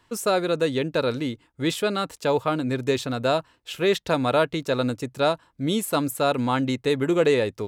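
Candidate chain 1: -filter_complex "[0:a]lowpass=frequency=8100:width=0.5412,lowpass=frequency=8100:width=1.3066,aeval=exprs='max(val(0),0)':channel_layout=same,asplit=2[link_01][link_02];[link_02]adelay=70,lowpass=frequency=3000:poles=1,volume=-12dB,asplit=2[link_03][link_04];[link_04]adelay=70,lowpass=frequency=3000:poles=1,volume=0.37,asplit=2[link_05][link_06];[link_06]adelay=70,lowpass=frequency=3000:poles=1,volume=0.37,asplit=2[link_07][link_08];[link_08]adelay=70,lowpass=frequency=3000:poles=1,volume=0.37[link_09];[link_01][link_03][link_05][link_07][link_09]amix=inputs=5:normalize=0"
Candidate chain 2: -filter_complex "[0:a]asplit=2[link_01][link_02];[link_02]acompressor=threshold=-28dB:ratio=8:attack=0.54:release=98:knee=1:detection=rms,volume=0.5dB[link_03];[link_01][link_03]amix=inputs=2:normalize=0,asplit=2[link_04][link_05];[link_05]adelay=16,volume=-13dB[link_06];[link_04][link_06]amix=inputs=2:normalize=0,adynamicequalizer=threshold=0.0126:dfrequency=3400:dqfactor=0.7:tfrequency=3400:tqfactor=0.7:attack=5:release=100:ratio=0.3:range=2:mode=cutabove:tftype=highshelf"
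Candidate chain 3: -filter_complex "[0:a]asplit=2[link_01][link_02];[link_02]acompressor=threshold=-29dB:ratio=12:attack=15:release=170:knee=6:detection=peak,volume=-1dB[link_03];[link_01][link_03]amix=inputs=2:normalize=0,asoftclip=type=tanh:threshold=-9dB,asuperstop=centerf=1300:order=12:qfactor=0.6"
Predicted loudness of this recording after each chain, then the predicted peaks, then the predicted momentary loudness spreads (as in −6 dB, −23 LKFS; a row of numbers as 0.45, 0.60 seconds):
−28.5, −21.5, −23.5 LKFS; −8.0, −6.5, −9.0 dBFS; 6, 5, 5 LU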